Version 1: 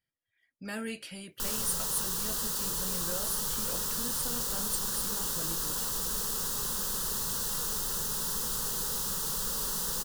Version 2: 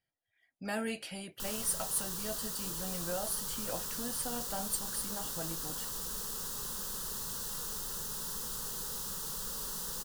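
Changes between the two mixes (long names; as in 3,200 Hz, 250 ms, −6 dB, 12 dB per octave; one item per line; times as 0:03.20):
speech: add parametric band 740 Hz +10.5 dB 0.54 octaves
background −6.5 dB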